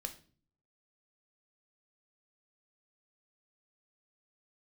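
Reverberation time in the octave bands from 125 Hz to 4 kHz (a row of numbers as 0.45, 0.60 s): 0.85, 0.70, 0.50, 0.35, 0.35, 0.35 s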